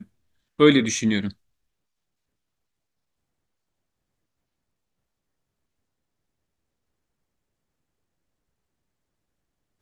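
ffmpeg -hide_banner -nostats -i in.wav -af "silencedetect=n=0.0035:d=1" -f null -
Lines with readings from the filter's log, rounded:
silence_start: 1.33
silence_end: 9.81 | silence_duration: 8.49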